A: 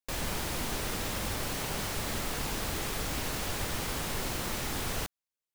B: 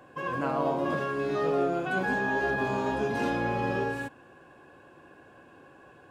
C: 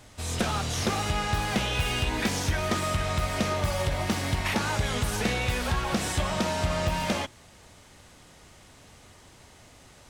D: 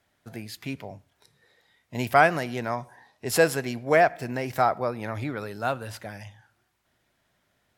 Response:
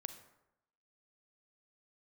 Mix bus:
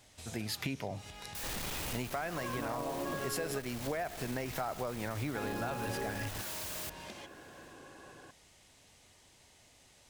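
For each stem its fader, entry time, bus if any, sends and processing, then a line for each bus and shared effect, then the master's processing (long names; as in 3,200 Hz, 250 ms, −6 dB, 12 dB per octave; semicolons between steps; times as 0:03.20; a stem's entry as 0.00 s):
−4.5 dB, 1.35 s, no send, sign of each sample alone
0.0 dB, 2.20 s, muted 0:03.59–0:05.35, no send, no processing
−10.0 dB, 0.00 s, no send, parametric band 1,300 Hz −7.5 dB 0.77 octaves; downward compressor 6 to 1, threshold −36 dBFS, peak gain reduction 13.5 dB; tilt shelving filter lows −4 dB, about 660 Hz
−4.0 dB, 0.00 s, no send, automatic gain control gain up to 14 dB; brickwall limiter −10 dBFS, peak gain reduction 9 dB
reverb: not used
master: downward compressor 6 to 1, threshold −34 dBFS, peak gain reduction 14 dB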